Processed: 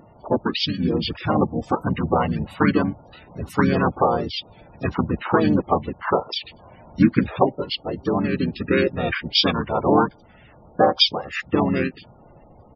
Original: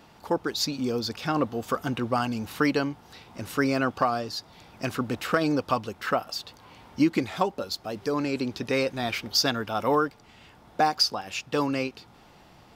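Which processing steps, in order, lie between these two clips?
loudest bins only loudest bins 32; harmony voices -12 st -12 dB, -7 st -1 dB, -5 st -1 dB; trim +2 dB

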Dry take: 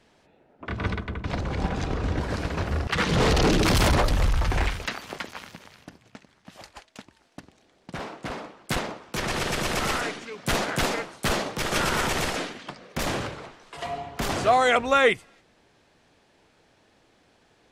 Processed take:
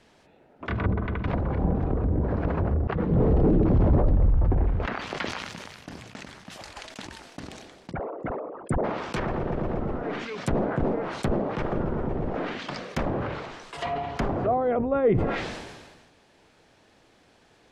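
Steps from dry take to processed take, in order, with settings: 7.91–8.84 s: resonances exaggerated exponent 3; low-pass that closes with the level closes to 480 Hz, closed at -22.5 dBFS; decay stretcher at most 40 dB/s; trim +2 dB

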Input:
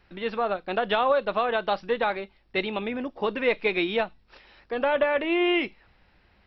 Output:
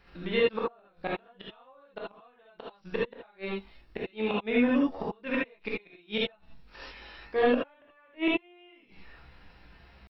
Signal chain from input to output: tempo 0.64×; inverted gate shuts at -19 dBFS, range -39 dB; gated-style reverb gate 100 ms rising, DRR -5 dB

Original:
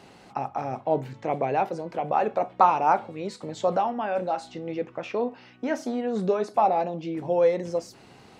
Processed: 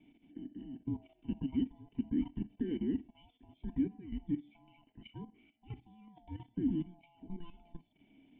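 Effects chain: split-band scrambler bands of 500 Hz; level held to a coarse grid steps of 13 dB; cascade formant filter i

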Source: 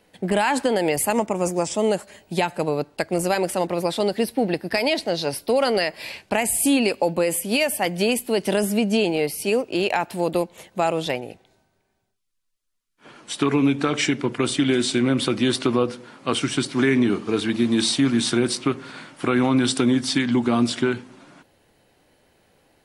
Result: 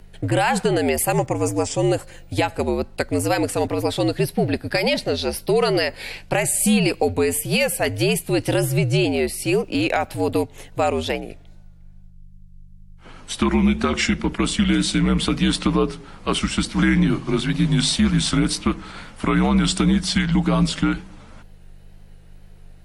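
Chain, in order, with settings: hum 50 Hz, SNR 21 dB; wow and flutter 57 cents; frequency shift -71 Hz; trim +1.5 dB

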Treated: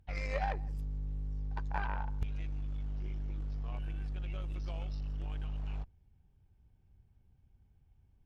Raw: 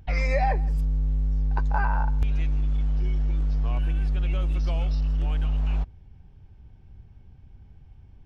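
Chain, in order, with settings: Chebyshev shaper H 3 -13 dB, 8 -33 dB, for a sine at -11 dBFS; 2.86–3.42 s: loudspeaker Doppler distortion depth 0.24 ms; trim -6.5 dB

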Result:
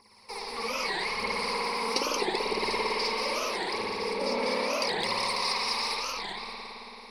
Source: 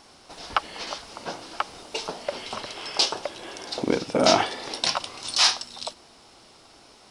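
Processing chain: rippled EQ curve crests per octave 0.89, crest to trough 17 dB; level held to a coarse grid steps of 23 dB; tremolo triangle 1.6 Hz, depth 55%; compressor with a negative ratio -34 dBFS, ratio -0.5; bass shelf 160 Hz -12 dB; two-band feedback delay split 1.9 kHz, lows 280 ms, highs 196 ms, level -3.5 dB; phaser 0.8 Hz, delay 4.6 ms, feedback 70%; spring tank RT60 3.5 s, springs 55 ms, chirp 30 ms, DRR -6 dB; warped record 45 rpm, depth 250 cents; trim +2 dB

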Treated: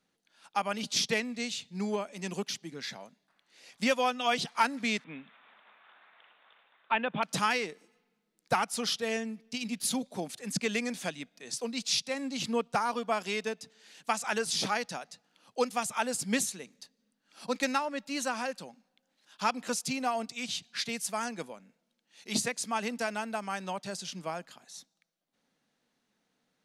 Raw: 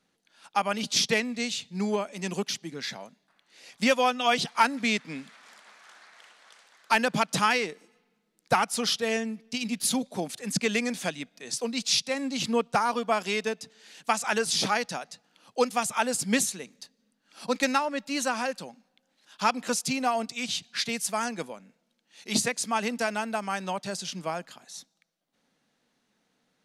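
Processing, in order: 5.04–7.23 s: rippled Chebyshev low-pass 3.7 kHz, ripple 3 dB; trim -4.5 dB

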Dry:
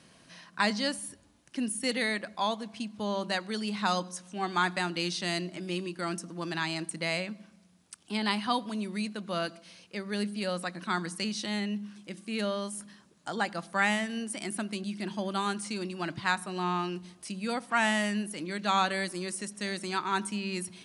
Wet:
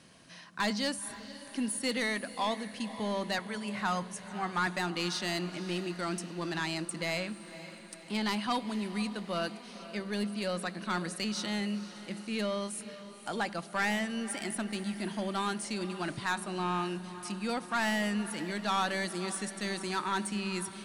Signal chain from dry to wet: 3.38–4.67 s: graphic EQ 125/250/500/2000/4000 Hz +12/-10/-3/+5/-12 dB; saturation -23.5 dBFS, distortion -13 dB; echo that smears into a reverb 509 ms, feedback 59%, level -14 dB

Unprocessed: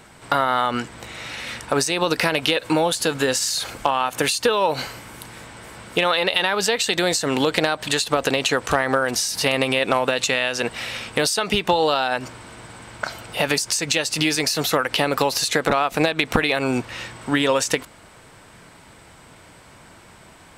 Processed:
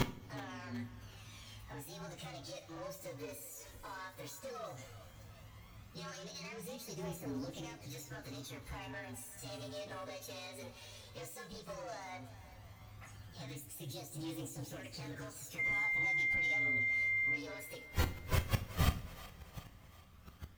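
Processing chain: frequency axis rescaled in octaves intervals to 117%; bass shelf 220 Hz +11 dB; in parallel at -2 dB: compression, threshold -34 dBFS, peak gain reduction 20 dB; on the sum: saturation -19 dBFS, distortion -10 dB; phaser 0.14 Hz, delay 2.2 ms, feedback 46%; inverted gate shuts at -30 dBFS, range -35 dB; 15.58–17.35 s: whistle 2.1 kHz -42 dBFS; on a send: two-band feedback delay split 430 Hz, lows 82 ms, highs 373 ms, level -15.5 dB; on the sum: two-slope reverb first 0.38 s, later 4.6 s, from -21 dB, DRR 7.5 dB; trim +10.5 dB

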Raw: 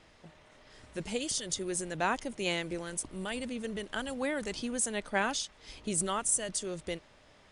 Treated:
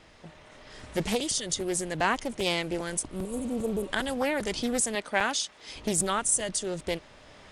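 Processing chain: recorder AGC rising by 5.5 dB/s; 3.23–3.88 s: spectral replace 500–6700 Hz before; 4.95–5.76 s: high-pass 270 Hz 6 dB/octave; crackling interface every 0.40 s, samples 128, repeat, from 0.80 s; loudspeaker Doppler distortion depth 0.37 ms; trim +4.5 dB

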